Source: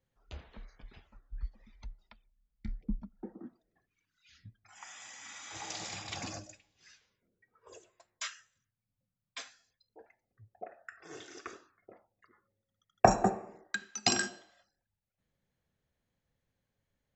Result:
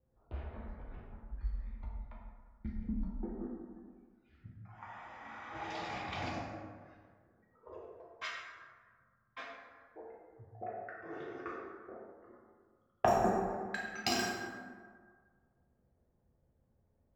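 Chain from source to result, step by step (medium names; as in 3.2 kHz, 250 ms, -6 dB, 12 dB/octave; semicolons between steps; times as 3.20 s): median filter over 5 samples; level-controlled noise filter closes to 750 Hz, open at -32 dBFS; compression 1.5:1, threshold -55 dBFS, peak gain reduction 14.5 dB; plate-style reverb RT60 1.7 s, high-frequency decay 0.45×, DRR -4 dB; trim +4 dB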